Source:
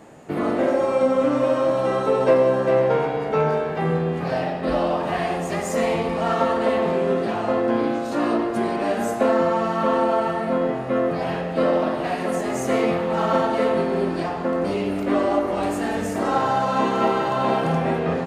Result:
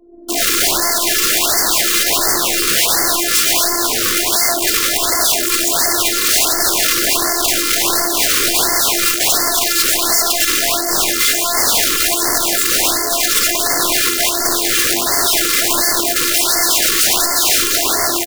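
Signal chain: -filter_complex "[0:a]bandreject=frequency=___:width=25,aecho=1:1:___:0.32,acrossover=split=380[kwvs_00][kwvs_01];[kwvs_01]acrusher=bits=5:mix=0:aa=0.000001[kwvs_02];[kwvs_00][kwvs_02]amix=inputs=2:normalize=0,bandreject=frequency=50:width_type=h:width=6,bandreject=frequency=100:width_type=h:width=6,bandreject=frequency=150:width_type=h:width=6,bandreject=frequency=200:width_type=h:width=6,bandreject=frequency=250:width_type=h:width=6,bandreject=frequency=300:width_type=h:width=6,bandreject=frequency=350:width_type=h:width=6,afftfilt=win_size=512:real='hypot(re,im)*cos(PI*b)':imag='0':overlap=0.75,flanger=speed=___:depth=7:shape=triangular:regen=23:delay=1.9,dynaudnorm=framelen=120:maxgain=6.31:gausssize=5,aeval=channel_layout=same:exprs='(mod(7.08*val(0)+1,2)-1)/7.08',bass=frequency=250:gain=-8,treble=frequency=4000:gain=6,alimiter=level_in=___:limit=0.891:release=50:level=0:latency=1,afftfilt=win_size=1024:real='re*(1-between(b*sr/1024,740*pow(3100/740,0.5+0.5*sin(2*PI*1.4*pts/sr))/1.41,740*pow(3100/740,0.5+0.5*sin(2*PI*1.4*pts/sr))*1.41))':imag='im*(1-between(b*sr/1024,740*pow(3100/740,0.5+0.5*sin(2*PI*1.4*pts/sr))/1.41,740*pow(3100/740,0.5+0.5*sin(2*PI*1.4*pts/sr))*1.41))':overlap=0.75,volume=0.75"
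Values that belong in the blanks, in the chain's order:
4700, 4.6, 0.41, 8.41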